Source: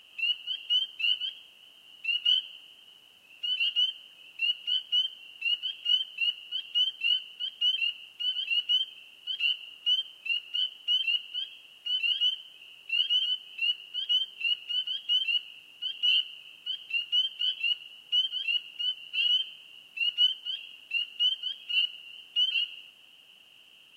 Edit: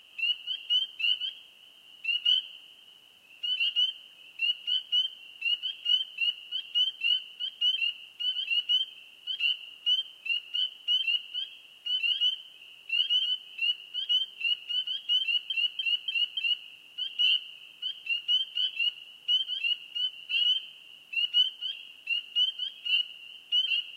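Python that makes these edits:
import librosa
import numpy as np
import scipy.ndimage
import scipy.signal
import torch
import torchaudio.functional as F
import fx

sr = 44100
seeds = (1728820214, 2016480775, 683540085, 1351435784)

y = fx.edit(x, sr, fx.repeat(start_s=15.21, length_s=0.29, count=5), tone=tone)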